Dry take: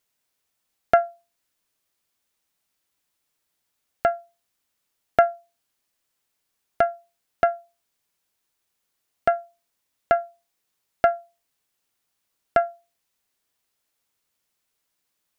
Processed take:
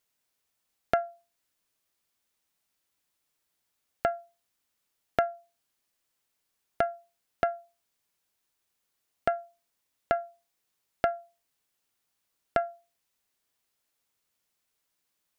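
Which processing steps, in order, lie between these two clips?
compression 2.5:1, threshold -22 dBFS, peak gain reduction 7.5 dB; trim -2.5 dB

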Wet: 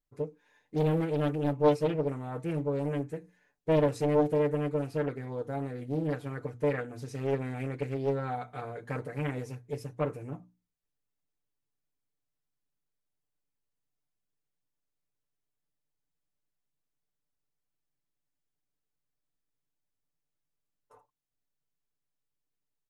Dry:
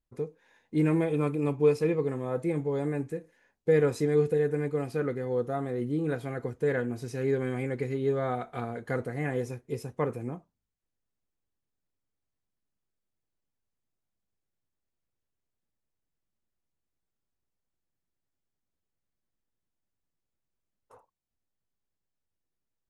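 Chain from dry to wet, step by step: hum notches 60/120/180/240/300 Hz; comb 6.8 ms, depth 91%; loudspeaker Doppler distortion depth 0.84 ms; trim -5.5 dB

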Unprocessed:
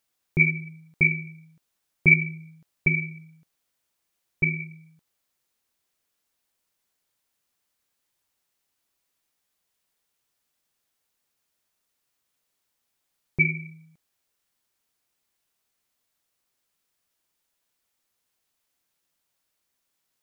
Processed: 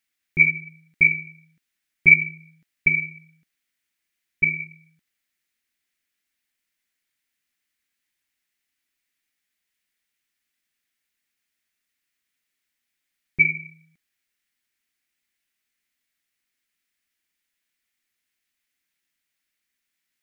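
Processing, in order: graphic EQ 125/250/500/1000/2000 Hz -6/+4/-7/-8/+11 dB; trim -3.5 dB

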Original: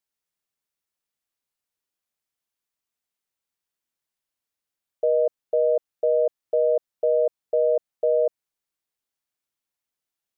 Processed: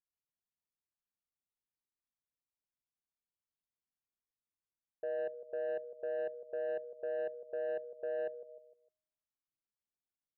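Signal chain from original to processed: Bessel low-pass 720 Hz; peaking EQ 530 Hz -9.5 dB 1.6 oct; hum notches 60/120/180/240/300/360 Hz; feedback comb 310 Hz, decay 0.98 s, mix 40%; feedback delay 152 ms, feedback 40%, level -13 dB; saturation -31 dBFS, distortion -16 dB

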